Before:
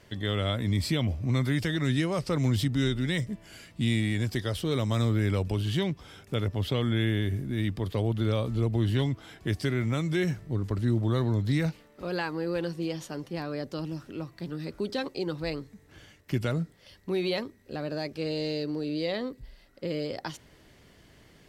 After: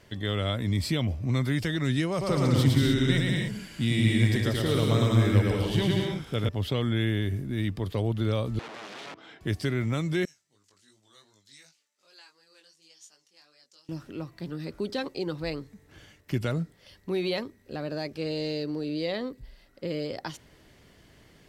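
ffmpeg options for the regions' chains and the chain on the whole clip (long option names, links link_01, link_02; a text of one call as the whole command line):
ffmpeg -i in.wav -filter_complex "[0:a]asettb=1/sr,asplit=3[link_01][link_02][link_03];[link_01]atrim=end=2.104[link_04];[link_02]atrim=start=2.1:end=6.49,asetpts=PTS-STARTPTS,afade=type=in:duration=0.004:curve=qsin,afade=type=out:start_time=4.386:duration=0.004:curve=qsin,bandreject=frequency=7200:width=30,aecho=1:1:110|187|240.9|278.6|305:0.794|0.631|0.501|0.398|0.316,atrim=end_sample=193599[link_05];[link_03]atrim=start=6.486[link_06];[link_04][link_05]acrossfade=duration=0.004:curve1=hsin:curve2=qsin[link_07];[link_07][link_06]acrossfade=duration=0.004:curve1=qsin:curve2=hsin,asettb=1/sr,asplit=3[link_08][link_09][link_10];[link_08]atrim=end=8.594[link_11];[link_09]atrim=start=8.59:end=9.41,asetpts=PTS-STARTPTS,afade=type=in:duration=0.004:curve=qsin,afade=type=out:start_time=0.816:duration=0.004:curve=qsin,acompressor=threshold=-28dB:ratio=5:attack=3.2:release=140:knee=1:detection=peak,aeval=exprs='(mod(59.6*val(0)+1,2)-1)/59.6':channel_layout=same,highpass=240,lowpass=4200[link_12];[link_10]atrim=start=9.406[link_13];[link_11][link_12]acrossfade=duration=0.004:curve1=hsin:curve2=qsin[link_14];[link_14][link_13]acrossfade=duration=0.004:curve1=qsin:curve2=hsin,asettb=1/sr,asplit=3[link_15][link_16][link_17];[link_15]atrim=end=10.254[link_18];[link_16]atrim=start=10.25:end=13.89,asetpts=PTS-STARTPTS,afade=type=in:duration=0.004:curve=qsin,afade=type=out:start_time=3.636:duration=0.004:curve=qsin,bandpass=frequency=6800:width_type=q:width=2,flanger=delay=19:depth=2.7:speed=2.7[link_19];[link_17]atrim=start=13.886[link_20];[link_18][link_19]acrossfade=duration=0.004:curve1=hsin:curve2=qsin[link_21];[link_21][link_20]acrossfade=duration=0.004:curve1=qsin:curve2=hsin" out.wav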